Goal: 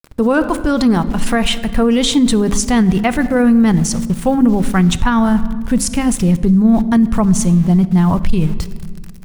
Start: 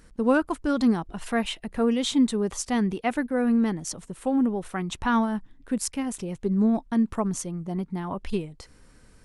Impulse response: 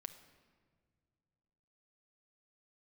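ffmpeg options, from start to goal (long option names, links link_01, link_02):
-filter_complex "[0:a]aeval=exprs='val(0)*gte(abs(val(0)),0.00531)':channel_layout=same,asplit=2[link_01][link_02];[1:a]atrim=start_sample=2205[link_03];[link_02][link_03]afir=irnorm=-1:irlink=0,volume=5.5dB[link_04];[link_01][link_04]amix=inputs=2:normalize=0,asubboost=boost=5.5:cutoff=150,alimiter=limit=-14dB:level=0:latency=1:release=29,bandreject=frequency=67.11:width_type=h:width=4,bandreject=frequency=134.22:width_type=h:width=4,bandreject=frequency=201.33:width_type=h:width=4,bandreject=frequency=268.44:width_type=h:width=4,bandreject=frequency=335.55:width_type=h:width=4,volume=8.5dB"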